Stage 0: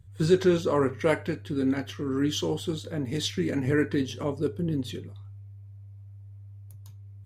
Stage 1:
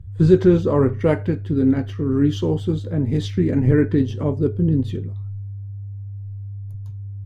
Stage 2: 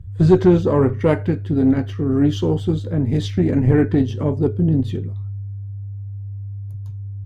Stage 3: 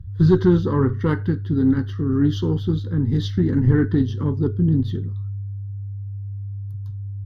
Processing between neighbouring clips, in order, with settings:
spectral tilt −3.5 dB per octave; level +2 dB
tube saturation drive 6 dB, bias 0.35; level +3 dB
phaser with its sweep stopped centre 2,400 Hz, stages 6

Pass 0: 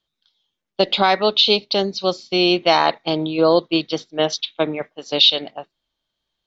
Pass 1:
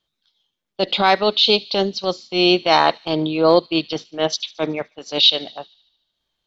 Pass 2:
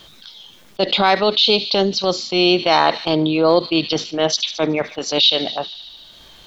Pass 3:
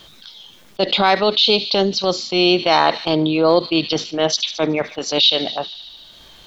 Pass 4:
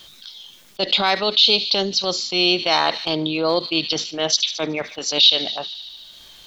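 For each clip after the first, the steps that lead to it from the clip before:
tape wow and flutter 20 cents; transient designer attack −8 dB, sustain −4 dB; delay with a high-pass on its return 74 ms, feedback 61%, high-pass 3,500 Hz, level −19 dB; level +2.5 dB
envelope flattener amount 50%; level −1.5 dB
no processing that can be heard
high-shelf EQ 2,300 Hz +10.5 dB; level −6.5 dB

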